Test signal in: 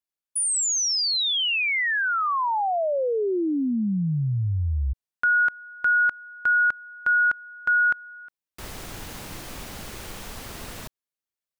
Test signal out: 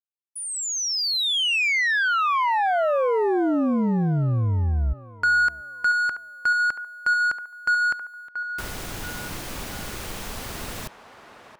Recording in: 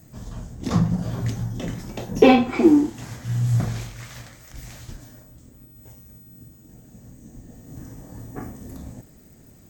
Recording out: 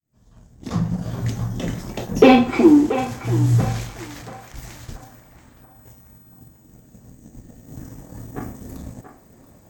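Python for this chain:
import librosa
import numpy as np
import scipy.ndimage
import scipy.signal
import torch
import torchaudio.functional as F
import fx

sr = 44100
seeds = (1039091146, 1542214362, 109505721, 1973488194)

y = fx.fade_in_head(x, sr, length_s=1.65)
y = fx.leveller(y, sr, passes=1)
y = fx.echo_banded(y, sr, ms=681, feedback_pct=43, hz=960.0, wet_db=-8)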